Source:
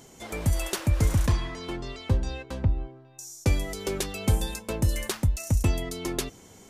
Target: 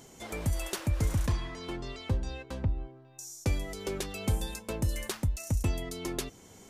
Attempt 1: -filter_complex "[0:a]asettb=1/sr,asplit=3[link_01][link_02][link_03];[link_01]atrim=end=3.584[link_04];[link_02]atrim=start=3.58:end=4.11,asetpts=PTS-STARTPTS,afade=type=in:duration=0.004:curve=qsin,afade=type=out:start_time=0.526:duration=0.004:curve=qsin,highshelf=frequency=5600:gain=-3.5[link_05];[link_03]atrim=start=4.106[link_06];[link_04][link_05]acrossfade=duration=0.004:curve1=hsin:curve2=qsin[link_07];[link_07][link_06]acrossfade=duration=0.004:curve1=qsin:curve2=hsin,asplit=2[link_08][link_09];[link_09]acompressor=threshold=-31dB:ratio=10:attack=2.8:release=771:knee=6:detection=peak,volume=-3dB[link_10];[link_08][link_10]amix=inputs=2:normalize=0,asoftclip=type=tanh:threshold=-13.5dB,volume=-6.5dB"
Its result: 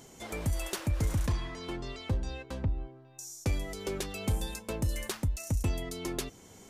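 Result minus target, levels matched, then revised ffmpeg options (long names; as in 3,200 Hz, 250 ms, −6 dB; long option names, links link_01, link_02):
soft clipping: distortion +11 dB
-filter_complex "[0:a]asettb=1/sr,asplit=3[link_01][link_02][link_03];[link_01]atrim=end=3.584[link_04];[link_02]atrim=start=3.58:end=4.11,asetpts=PTS-STARTPTS,afade=type=in:duration=0.004:curve=qsin,afade=type=out:start_time=0.526:duration=0.004:curve=qsin,highshelf=frequency=5600:gain=-3.5[link_05];[link_03]atrim=start=4.106[link_06];[link_04][link_05]acrossfade=duration=0.004:curve1=hsin:curve2=qsin[link_07];[link_07][link_06]acrossfade=duration=0.004:curve1=qsin:curve2=hsin,asplit=2[link_08][link_09];[link_09]acompressor=threshold=-31dB:ratio=10:attack=2.8:release=771:knee=6:detection=peak,volume=-3dB[link_10];[link_08][link_10]amix=inputs=2:normalize=0,asoftclip=type=tanh:threshold=-7dB,volume=-6.5dB"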